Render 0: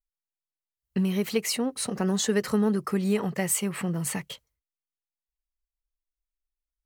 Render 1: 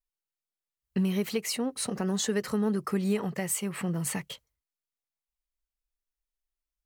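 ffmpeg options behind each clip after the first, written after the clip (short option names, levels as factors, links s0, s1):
-af "alimiter=limit=0.158:level=0:latency=1:release=356,volume=0.841"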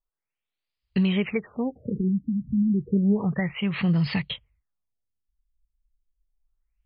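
-af "asubboost=boost=5:cutoff=160,aexciter=amount=2.4:drive=4.3:freq=2100,afftfilt=real='re*lt(b*sr/1024,290*pow(5200/290,0.5+0.5*sin(2*PI*0.31*pts/sr)))':imag='im*lt(b*sr/1024,290*pow(5200/290,0.5+0.5*sin(2*PI*0.31*pts/sr)))':win_size=1024:overlap=0.75,volume=1.58"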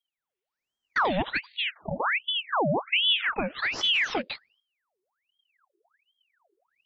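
-af "aeval=exprs='val(0)*sin(2*PI*1800*n/s+1800*0.8/1.3*sin(2*PI*1.3*n/s))':c=same"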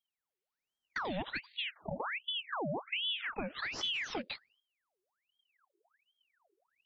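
-filter_complex "[0:a]acrossover=split=320|4300[s0][s1][s2];[s0]acompressor=threshold=0.02:ratio=4[s3];[s1]acompressor=threshold=0.0251:ratio=4[s4];[s2]acompressor=threshold=0.0141:ratio=4[s5];[s3][s4][s5]amix=inputs=3:normalize=0,volume=0.562"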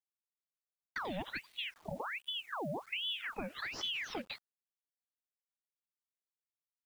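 -af "acrusher=bits=9:mix=0:aa=0.000001,volume=0.75"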